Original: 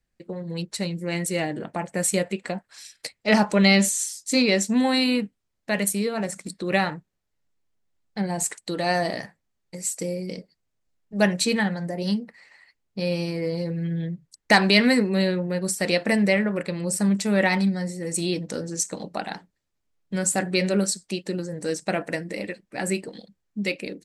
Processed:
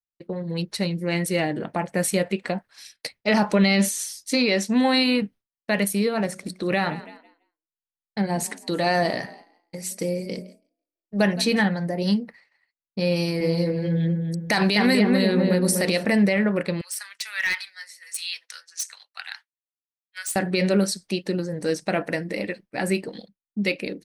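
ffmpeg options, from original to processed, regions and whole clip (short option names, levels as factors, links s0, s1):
-filter_complex "[0:a]asettb=1/sr,asplit=3[s0][s1][s2];[s0]atrim=end=4.314[s3];[s1]atrim=start=4.31:end=5.22,asetpts=PTS-STARTPTS,afade=t=in:d=0.004:c=qsin,afade=t=out:st=0.906:d=0.004:c=qsin,lowpass=11000,lowshelf=f=130:g=-10[s4];[s2]atrim=start=5.216[s5];[s3][s4]acrossfade=d=0.004:c1=hsin:c2=qsin[s6];[s6][s5]acrossfade=d=0.004:c1=qsin:c2=hsin,asettb=1/sr,asplit=3[s7][s8][s9];[s7]atrim=end=6.264[s10];[s8]atrim=start=6.26:end=11.65,asetpts=PTS-STARTPTS,afade=t=in:d=0.004:c=qsin,afade=t=out:st=5.386:d=0.004:c=qsin,bandreject=f=184.4:t=h:w=4,bandreject=f=368.8:t=h:w=4,bandreject=f=553.2:t=h:w=4,bandreject=f=737.6:t=h:w=4,asplit=5[s11][s12][s13][s14][s15];[s12]adelay=165,afreqshift=38,volume=0.1[s16];[s13]adelay=330,afreqshift=76,volume=0.0562[s17];[s14]adelay=495,afreqshift=114,volume=0.0313[s18];[s15]adelay=660,afreqshift=152,volume=0.0176[s19];[s11][s16][s17][s18][s19]amix=inputs=5:normalize=0,atrim=end_sample=237699[s20];[s9]atrim=start=11.646[s21];[s10][s20]acrossfade=d=0.004:c1=hsin:c2=qsin[s22];[s22][s21]acrossfade=d=0.004:c1=qsin:c2=hsin,asettb=1/sr,asplit=3[s23][s24][s25];[s23]atrim=end=13.164[s26];[s24]atrim=start=13.16:end=16.05,asetpts=PTS-STARTPTS,afade=t=in:d=0.004:c=qsin,afade=t=out:st=2.886:d=0.004:c=qsin,highshelf=f=4900:g=8.5,asplit=2[s27][s28];[s28]adelay=246,lowpass=f=1100:p=1,volume=0.668,asplit=2[s29][s30];[s30]adelay=246,lowpass=f=1100:p=1,volume=0.41,asplit=2[s31][s32];[s32]adelay=246,lowpass=f=1100:p=1,volume=0.41,asplit=2[s33][s34];[s34]adelay=246,lowpass=f=1100:p=1,volume=0.41,asplit=2[s35][s36];[s36]adelay=246,lowpass=f=1100:p=1,volume=0.41[s37];[s27][s29][s31][s33][s35][s37]amix=inputs=6:normalize=0,atrim=end_sample=127449[s38];[s25]atrim=start=16.046[s39];[s26][s38]acrossfade=d=0.004:c1=hsin:c2=qsin[s40];[s40][s39]acrossfade=d=0.004:c1=qsin:c2=hsin,asettb=1/sr,asplit=3[s41][s42][s43];[s41]atrim=end=16.814[s44];[s42]atrim=start=16.81:end=20.36,asetpts=PTS-STARTPTS,afade=t=in:d=0.004:c=qsin,afade=t=out:st=3.546:d=0.004:c=qsin,highpass=f=1500:w=0.5412,highpass=f=1500:w=1.3066,asoftclip=type=hard:threshold=0.0891[s45];[s43]atrim=start=20.356[s46];[s44][s45]acrossfade=d=0.004:c1=hsin:c2=qsin[s47];[s47][s46]acrossfade=d=0.004:c1=qsin:c2=hsin,agate=range=0.0224:threshold=0.00891:ratio=3:detection=peak,equalizer=f=7500:t=o:w=0.33:g=-12.5,alimiter=limit=0.211:level=0:latency=1:release=48,volume=1.41"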